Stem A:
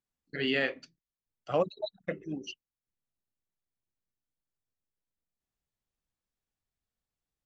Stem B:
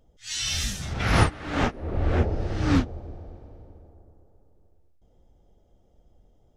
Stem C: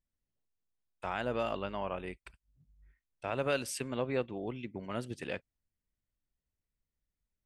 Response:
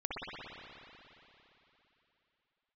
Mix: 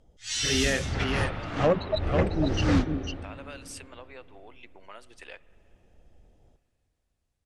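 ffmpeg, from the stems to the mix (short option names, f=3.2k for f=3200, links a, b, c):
-filter_complex "[0:a]equalizer=f=66:w=0.62:g=13,dynaudnorm=f=230:g=13:m=7dB,adelay=100,volume=2dB,asplit=2[a][b];[b]volume=-5.5dB[c];[1:a]volume=0dB,asplit=2[d][e];[e]volume=-18dB[f];[2:a]acompressor=threshold=-41dB:ratio=4,highpass=680,volume=2.5dB,asplit=3[g][h][i];[h]volume=-24dB[j];[i]apad=whole_len=289310[k];[d][k]sidechaincompress=threshold=-51dB:ratio=8:attack=35:release=340[l];[3:a]atrim=start_sample=2205[m];[f][j]amix=inputs=2:normalize=0[n];[n][m]afir=irnorm=-1:irlink=0[o];[c]aecho=0:1:499:1[p];[a][l][g][o][p]amix=inputs=5:normalize=0,lowpass=f=11k:w=0.5412,lowpass=f=11k:w=1.3066,asoftclip=type=tanh:threshold=-14.5dB"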